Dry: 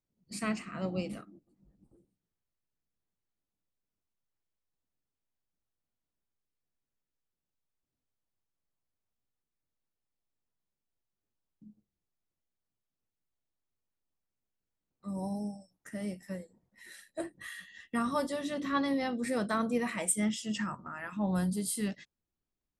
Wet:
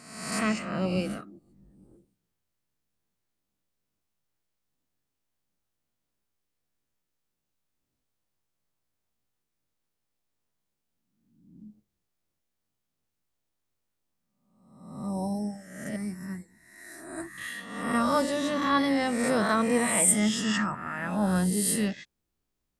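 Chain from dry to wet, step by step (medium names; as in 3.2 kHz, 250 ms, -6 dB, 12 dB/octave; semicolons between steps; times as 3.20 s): reverse spectral sustain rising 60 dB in 0.92 s; 15.96–17.38 s: static phaser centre 1.3 kHz, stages 4; trim +4.5 dB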